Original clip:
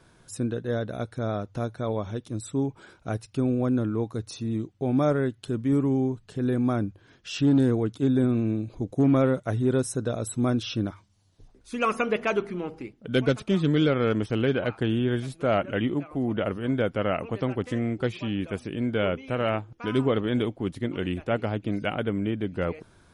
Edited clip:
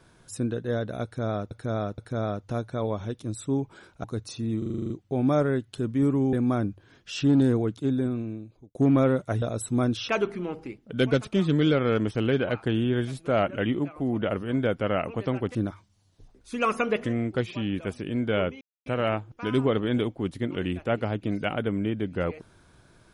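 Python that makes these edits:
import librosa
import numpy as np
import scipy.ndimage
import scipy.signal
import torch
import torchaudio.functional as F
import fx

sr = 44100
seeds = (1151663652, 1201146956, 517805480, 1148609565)

y = fx.edit(x, sr, fx.repeat(start_s=1.04, length_s=0.47, count=3),
    fx.cut(start_s=3.1, length_s=0.96),
    fx.stutter(start_s=4.6, slice_s=0.04, count=9),
    fx.cut(start_s=6.03, length_s=0.48),
    fx.fade_out_span(start_s=7.76, length_s=1.17),
    fx.cut(start_s=9.6, length_s=0.48),
    fx.move(start_s=10.75, length_s=1.49, to_s=17.7),
    fx.insert_silence(at_s=19.27, length_s=0.25), tone=tone)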